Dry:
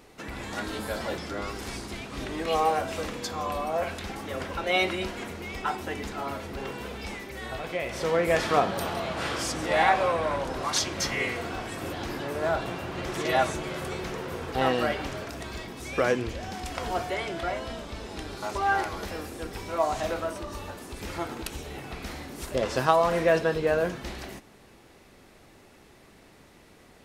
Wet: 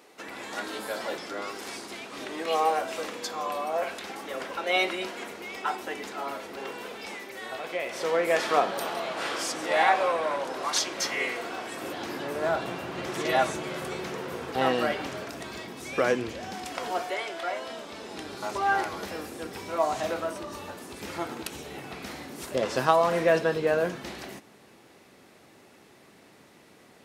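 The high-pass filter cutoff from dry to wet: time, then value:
0:11.51 320 Hz
0:12.50 150 Hz
0:16.48 150 Hz
0:17.35 510 Hz
0:18.40 140 Hz

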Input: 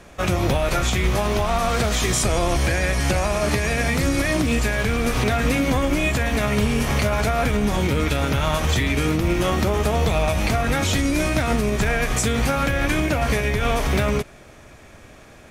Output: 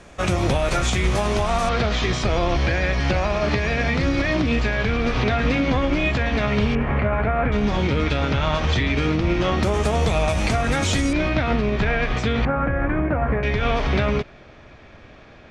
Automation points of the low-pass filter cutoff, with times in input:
low-pass filter 24 dB per octave
9,400 Hz
from 0:01.69 4,700 Hz
from 0:06.75 2,200 Hz
from 0:07.52 5,000 Hz
from 0:09.63 9,200 Hz
from 0:11.13 4,100 Hz
from 0:12.45 1,700 Hz
from 0:13.43 4,600 Hz

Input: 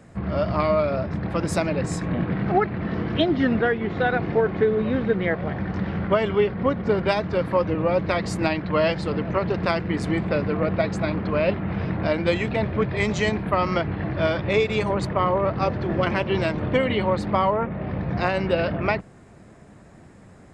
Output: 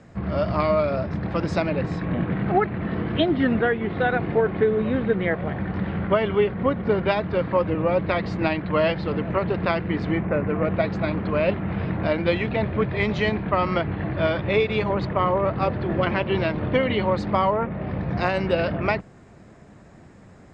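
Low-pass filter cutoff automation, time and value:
low-pass filter 24 dB per octave
0:01.22 6,900 Hz
0:01.77 4,000 Hz
0:10.05 4,000 Hz
0:10.32 2,100 Hz
0:10.86 4,300 Hz
0:16.47 4,300 Hz
0:17.46 7,700 Hz

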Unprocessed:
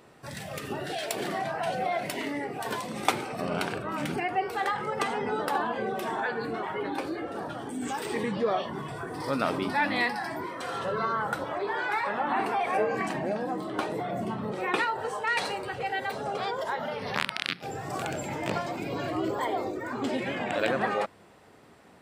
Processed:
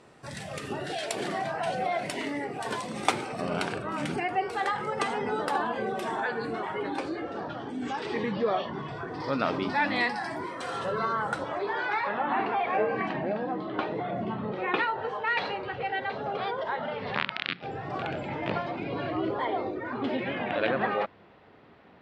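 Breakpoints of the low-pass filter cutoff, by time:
low-pass filter 24 dB per octave
0:06.87 10,000 Hz
0:07.47 5,200 Hz
0:09.40 5,200 Hz
0:10.43 10,000 Hz
0:11.25 10,000 Hz
0:12.27 3,800 Hz

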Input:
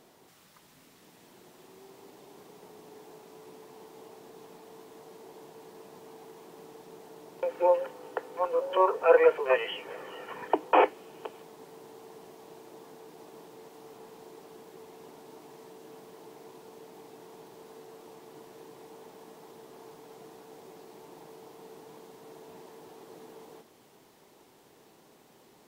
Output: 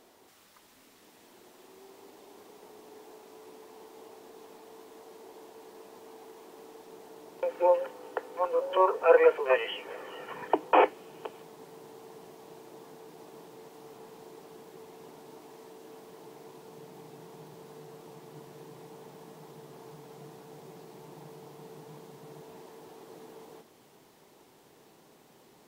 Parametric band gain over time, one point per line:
parametric band 150 Hz 0.45 octaves
−15 dB
from 0:06.91 −7.5 dB
from 0:10.16 +3 dB
from 0:15.40 −3 dB
from 0:16.10 +4.5 dB
from 0:16.70 +13 dB
from 0:22.41 +2 dB

